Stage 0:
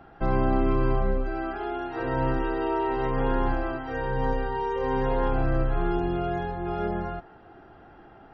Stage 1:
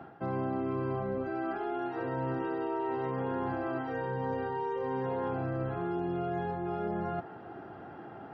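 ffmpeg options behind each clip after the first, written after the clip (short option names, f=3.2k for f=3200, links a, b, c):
-af "highpass=f=99:w=0.5412,highpass=f=99:w=1.3066,highshelf=f=2.2k:g=-8.5,areverse,acompressor=threshold=-38dB:ratio=4,areverse,volume=5.5dB"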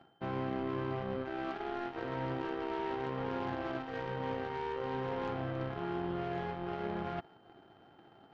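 -af "aeval=exprs='val(0)+0.00126*sin(2*PI*3100*n/s)':c=same,aeval=exprs='0.0794*(cos(1*acos(clip(val(0)/0.0794,-1,1)))-cos(1*PI/2))+0.00891*(cos(7*acos(clip(val(0)/0.0794,-1,1)))-cos(7*PI/2))':c=same,volume=-3dB"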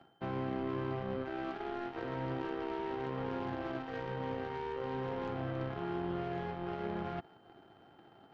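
-filter_complex "[0:a]acrossover=split=470[a][b];[b]acompressor=threshold=-39dB:ratio=6[c];[a][c]amix=inputs=2:normalize=0"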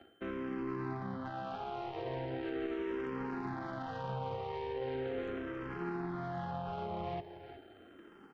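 -filter_complex "[0:a]alimiter=level_in=10.5dB:limit=-24dB:level=0:latency=1:release=17,volume=-10.5dB,aecho=1:1:364:0.266,asplit=2[a][b];[b]afreqshift=-0.39[c];[a][c]amix=inputs=2:normalize=1,volume=6dB"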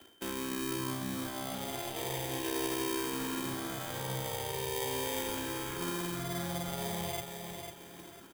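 -filter_complex "[0:a]acrossover=split=150|870|2700[a][b][c][d];[b]acrusher=samples=32:mix=1:aa=0.000001[e];[a][e][c][d]amix=inputs=4:normalize=0,aexciter=amount=2.3:drive=3.7:freq=2.8k,aecho=1:1:498|996|1494|1992:0.447|0.147|0.0486|0.0161,volume=1.5dB"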